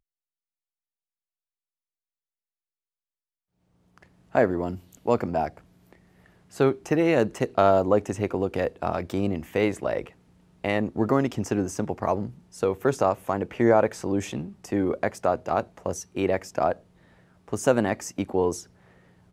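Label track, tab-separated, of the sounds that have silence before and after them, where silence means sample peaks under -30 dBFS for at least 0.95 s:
4.350000	5.480000	sound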